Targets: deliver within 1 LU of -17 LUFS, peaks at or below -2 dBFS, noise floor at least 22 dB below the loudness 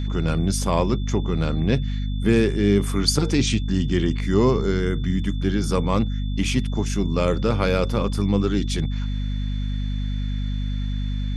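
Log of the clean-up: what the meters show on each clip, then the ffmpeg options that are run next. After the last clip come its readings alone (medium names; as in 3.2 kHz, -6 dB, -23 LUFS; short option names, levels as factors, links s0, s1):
hum 50 Hz; highest harmonic 250 Hz; hum level -22 dBFS; steady tone 3.5 kHz; tone level -43 dBFS; loudness -23.0 LUFS; peak level -5.5 dBFS; loudness target -17.0 LUFS
-> -af "bandreject=f=50:t=h:w=4,bandreject=f=100:t=h:w=4,bandreject=f=150:t=h:w=4,bandreject=f=200:t=h:w=4,bandreject=f=250:t=h:w=4"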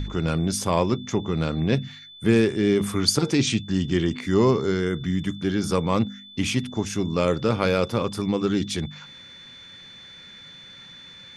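hum not found; steady tone 3.5 kHz; tone level -43 dBFS
-> -af "bandreject=f=3500:w=30"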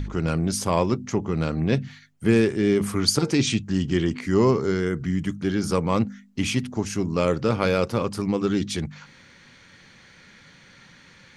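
steady tone not found; loudness -24.0 LUFS; peak level -5.5 dBFS; loudness target -17.0 LUFS
-> -af "volume=2.24,alimiter=limit=0.794:level=0:latency=1"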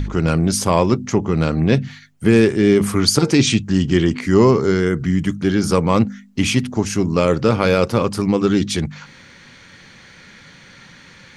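loudness -17.0 LUFS; peak level -2.0 dBFS; noise floor -45 dBFS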